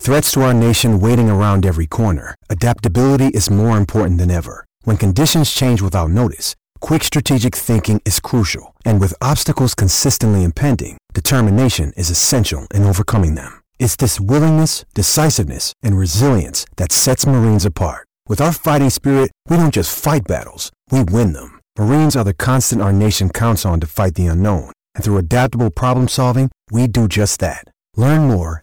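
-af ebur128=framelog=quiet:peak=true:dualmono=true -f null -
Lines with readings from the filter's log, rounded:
Integrated loudness:
  I:         -11.7 LUFS
  Threshold: -21.9 LUFS
Loudness range:
  LRA:         1.8 LU
  Threshold: -32.0 LUFS
  LRA low:   -12.9 LUFS
  LRA high:  -11.1 LUFS
True peak:
  Peak:       -5.3 dBFS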